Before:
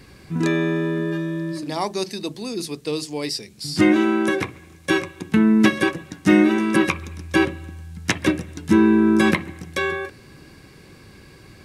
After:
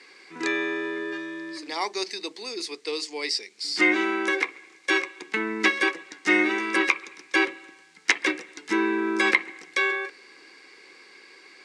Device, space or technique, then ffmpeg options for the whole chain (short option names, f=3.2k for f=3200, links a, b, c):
phone speaker on a table: -af "highpass=f=380:w=0.5412,highpass=f=380:w=1.3066,equalizer=f=610:t=q:w=4:g=-10,equalizer=f=2.1k:t=q:w=4:g=9,equalizer=f=4.6k:t=q:w=4:g=4,lowpass=f=8.3k:w=0.5412,lowpass=f=8.3k:w=1.3066,volume=-2dB"